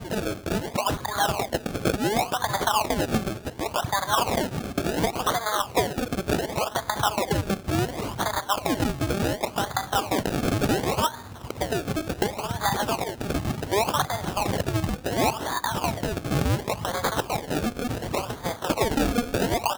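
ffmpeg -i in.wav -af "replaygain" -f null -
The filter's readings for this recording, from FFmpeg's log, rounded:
track_gain = +6.8 dB
track_peak = 0.218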